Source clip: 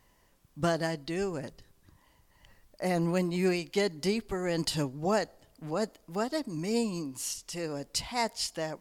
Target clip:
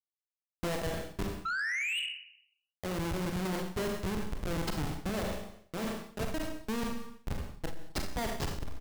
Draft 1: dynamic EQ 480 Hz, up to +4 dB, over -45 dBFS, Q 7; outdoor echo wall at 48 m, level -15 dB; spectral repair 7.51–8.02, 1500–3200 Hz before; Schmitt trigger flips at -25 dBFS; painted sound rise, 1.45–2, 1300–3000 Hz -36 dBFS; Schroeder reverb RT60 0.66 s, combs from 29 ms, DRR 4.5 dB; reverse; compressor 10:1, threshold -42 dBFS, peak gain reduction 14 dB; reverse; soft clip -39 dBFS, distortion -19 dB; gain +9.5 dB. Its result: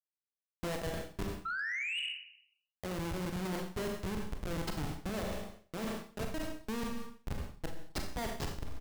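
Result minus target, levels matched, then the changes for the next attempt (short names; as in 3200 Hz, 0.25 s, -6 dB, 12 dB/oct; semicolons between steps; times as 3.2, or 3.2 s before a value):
compressor: peak gain reduction +6 dB
change: compressor 10:1, threshold -35.5 dBFS, peak gain reduction 8.5 dB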